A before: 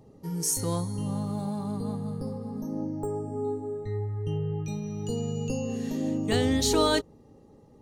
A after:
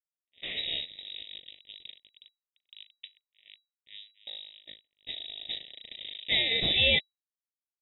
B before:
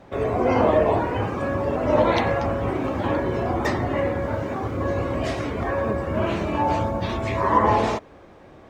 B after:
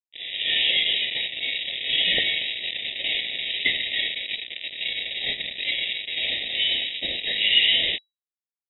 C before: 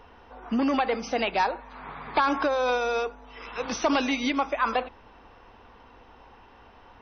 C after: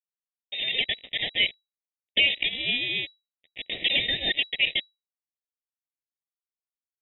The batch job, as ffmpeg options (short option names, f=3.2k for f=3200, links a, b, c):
-filter_complex "[0:a]equalizer=f=1k:w=0.42:g=-9.5,bandreject=f=394.9:t=h:w=4,bandreject=f=789.8:t=h:w=4,bandreject=f=1.1847k:t=h:w=4,bandreject=f=1.5796k:t=h:w=4,bandreject=f=1.9745k:t=h:w=4,bandreject=f=2.3694k:t=h:w=4,acrossover=split=1100[a][b];[a]asoftclip=type=hard:threshold=-26dB[c];[b]dynaudnorm=f=130:g=5:m=11dB[d];[c][d]amix=inputs=2:normalize=0,acrusher=bits=3:mix=0:aa=0.5,asuperstop=centerf=2600:order=12:qfactor=2.1,lowpass=f=3.3k:t=q:w=0.5098,lowpass=f=3.3k:t=q:w=0.6013,lowpass=f=3.3k:t=q:w=0.9,lowpass=f=3.3k:t=q:w=2.563,afreqshift=-3900,volume=3.5dB"